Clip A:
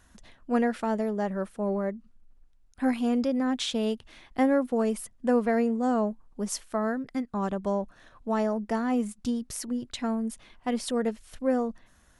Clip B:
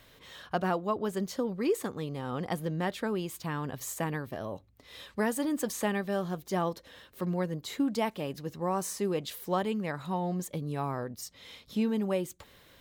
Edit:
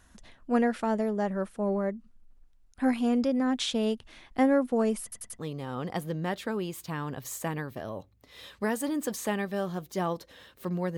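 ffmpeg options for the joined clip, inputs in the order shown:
-filter_complex "[0:a]apad=whole_dur=10.97,atrim=end=10.97,asplit=4[a][b][c][d];[a]atrim=end=5.122[e];[b]atrim=start=5.028:end=5.122[f];[c]atrim=start=5.028:end=5.122[g];[d]atrim=start=5.028:end=5.122[h];[1:a]atrim=start=1.948:end=7.53[i];[e][f]acrossfade=d=0.004:c1=hsin:c2=hsin[j];[j][g]acrossfade=d=0.004:c1=hsin:c2=hsin[k];[k][h]acrossfade=d=0.004:c1=hsin:c2=hsin[l];[l][i]acrossfade=d=0.004:c1=hsin:c2=hsin"

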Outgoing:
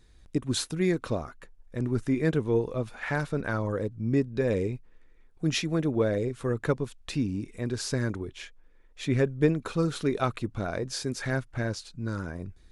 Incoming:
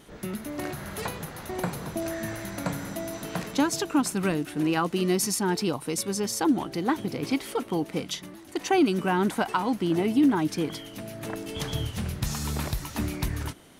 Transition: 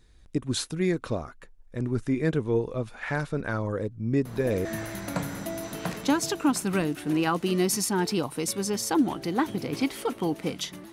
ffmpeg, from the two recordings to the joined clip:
-filter_complex "[1:a]asplit=2[a][b];[0:a]apad=whole_dur=10.92,atrim=end=10.92,atrim=end=4.652[c];[b]atrim=start=2.148:end=8.42[d];[a]atrim=start=1.75:end=2.15,asetpts=PTS-STARTPTS,volume=-7.5dB,afade=t=in:d=0.004:c=hsin,afade=t=out:st=0.396:d=0.004:c=hsin,adelay=187425S[e];[c][d]acrossfade=d=0.004:c1=hsin:c2=hsin[f];[f][e]amix=inputs=2:normalize=0"

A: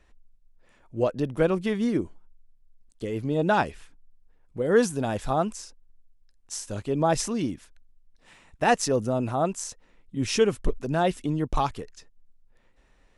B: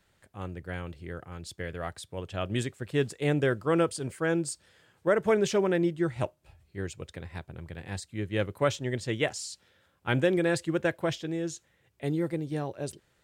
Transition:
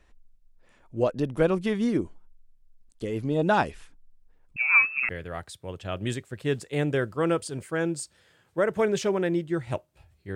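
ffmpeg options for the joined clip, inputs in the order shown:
-filter_complex "[0:a]asettb=1/sr,asplit=3[a][b][c];[a]atrim=end=4.564[d];[b]atrim=start=4.56:end=5.09,asetpts=PTS-STARTPTS,afade=t=in:d=0.004:c=qsin,afade=t=out:st=0.526:d=0.004:c=qsin,lowpass=f=2.4k:t=q:w=0.5098,lowpass=f=2.4k:t=q:w=0.6013,lowpass=f=2.4k:t=q:w=0.9,lowpass=f=2.4k:t=q:w=2.563,afreqshift=-2800[e];[c]atrim=start=5.086[f];[d][e]acrossfade=d=0.004:c1=hsin:c2=qsin[g];[g][f]acrossfade=d=0.004:c1=qsin:c2=hsin,apad=whole_dur=10.35,atrim=end=10.35,atrim=end=5.092[h];[1:a]atrim=start=1.578:end=6.84[i];[h][i]acrossfade=d=0.004:c1=hsin:c2=hsin"

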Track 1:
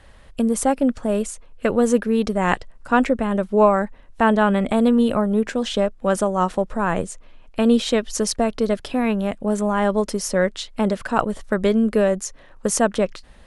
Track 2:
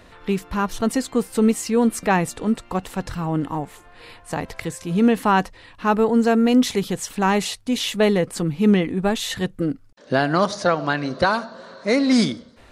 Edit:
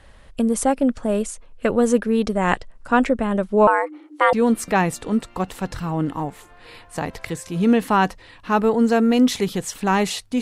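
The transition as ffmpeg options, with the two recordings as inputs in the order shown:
-filter_complex "[0:a]asettb=1/sr,asplit=3[a][b][c];[a]atrim=end=3.674[d];[b]atrim=start=3.67:end=4.33,asetpts=PTS-STARTPTS,afade=t=in:d=0.004:c=qsin,afade=t=out:st=0.656:d=0.004:c=qsin,afreqshift=290[e];[c]atrim=start=4.326[f];[d][e]acrossfade=d=0.004:c1=hsin:c2=qsin[g];[g][f]acrossfade=d=0.004:c1=qsin:c2=hsin,apad=whole_dur=10.41,atrim=end=10.41,atrim=end=4.332[h];[1:a]atrim=start=1.678:end=7.76[i];[h][i]acrossfade=d=0.004:c1=hsin:c2=hsin"

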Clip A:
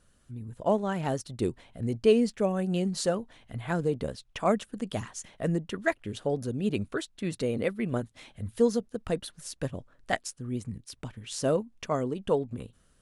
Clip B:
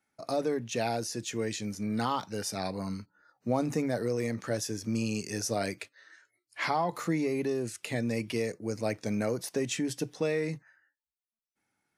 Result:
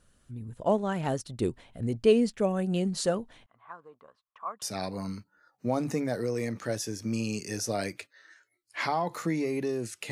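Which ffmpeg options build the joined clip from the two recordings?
-filter_complex "[0:a]asettb=1/sr,asplit=3[a][b][c];[a]atrim=end=3.464[d];[b]atrim=start=3.46:end=4.62,asetpts=PTS-STARTPTS,afade=t=in:d=0.004:c=qsin,afade=t=out:st=1.156:d=0.004:c=qsin,bandpass=f=1.1k:t=q:w=7.3:csg=0[e];[c]atrim=start=4.616[f];[d][e]acrossfade=d=0.004:c1=hsin:c2=qsin[g];[g][f]acrossfade=d=0.004:c1=qsin:c2=hsin,apad=whole_dur=10.11,atrim=end=10.11,atrim=end=4.622[h];[1:a]atrim=start=2.438:end=7.93[i];[h][i]acrossfade=d=0.004:c1=hsin:c2=hsin"

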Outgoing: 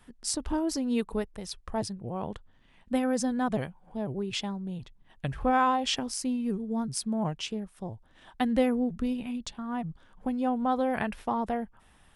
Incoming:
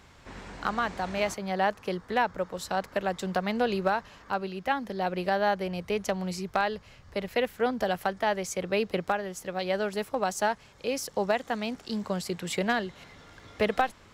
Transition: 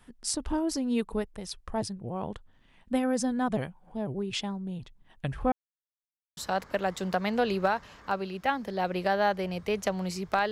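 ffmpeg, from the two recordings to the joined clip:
-filter_complex "[0:a]apad=whole_dur=10.51,atrim=end=10.51,asplit=2[a][b];[a]atrim=end=5.52,asetpts=PTS-STARTPTS,afade=t=out:st=5.516:d=0.004:c=hsin[c];[b]atrim=start=5.52:end=6.37,asetpts=PTS-STARTPTS,volume=0[d];[1:a]atrim=start=2.59:end=6.73,asetpts=PTS-STARTPTS,afade=t=in:d=0.004:c=hsin[e];[c][d][e]concat=n=3:v=0:a=1"

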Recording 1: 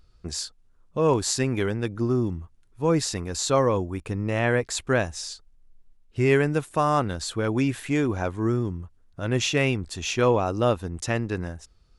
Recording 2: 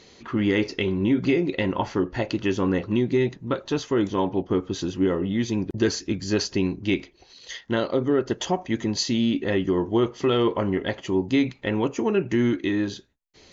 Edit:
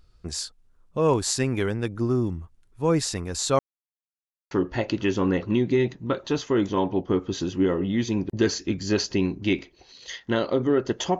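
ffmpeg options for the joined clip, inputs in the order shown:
-filter_complex "[0:a]apad=whole_dur=11.19,atrim=end=11.19,asplit=2[a][b];[a]atrim=end=3.59,asetpts=PTS-STARTPTS,afade=t=out:st=3.586:d=0.004:c=hsin[c];[b]atrim=start=3.59:end=4.51,asetpts=PTS-STARTPTS,volume=0[d];[1:a]atrim=start=1.92:end=8.6,asetpts=PTS-STARTPTS,afade=t=in:d=0.004:c=hsin[e];[c][d][e]concat=n=3:v=0:a=1"

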